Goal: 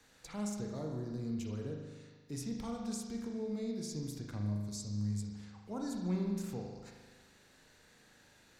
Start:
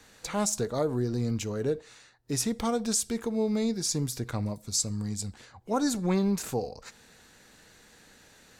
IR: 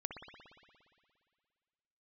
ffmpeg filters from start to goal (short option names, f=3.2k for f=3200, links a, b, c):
-filter_complex "[0:a]acrossover=split=270[a][b];[b]acompressor=threshold=-49dB:ratio=1.5[c];[a][c]amix=inputs=2:normalize=0[d];[1:a]atrim=start_sample=2205,asetrate=66150,aresample=44100[e];[d][e]afir=irnorm=-1:irlink=0,volume=-2.5dB"